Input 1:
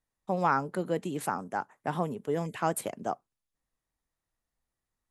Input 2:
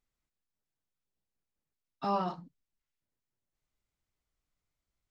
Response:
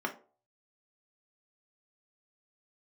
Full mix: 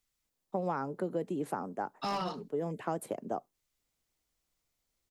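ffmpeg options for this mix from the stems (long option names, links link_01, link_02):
-filter_complex "[0:a]equalizer=frequency=390:width=0.35:gain=14.5,adelay=250,volume=-12dB[link_01];[1:a]highshelf=frequency=2200:gain=11.5,volume=24dB,asoftclip=hard,volume=-24dB,volume=-1.5dB,asplit=2[link_02][link_03];[link_03]apad=whole_len=236216[link_04];[link_01][link_04]sidechaincompress=threshold=-40dB:ratio=8:attack=16:release=500[link_05];[link_05][link_02]amix=inputs=2:normalize=0,acrossover=split=140|3000[link_06][link_07][link_08];[link_07]acompressor=threshold=-30dB:ratio=6[link_09];[link_06][link_09][link_08]amix=inputs=3:normalize=0"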